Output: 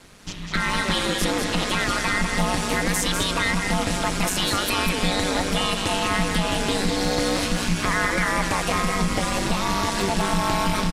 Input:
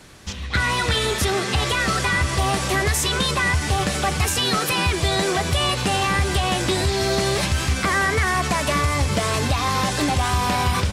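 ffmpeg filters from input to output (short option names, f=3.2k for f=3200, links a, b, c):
-af "aeval=exprs='val(0)*sin(2*PI*99*n/s)':c=same,aecho=1:1:198:0.531"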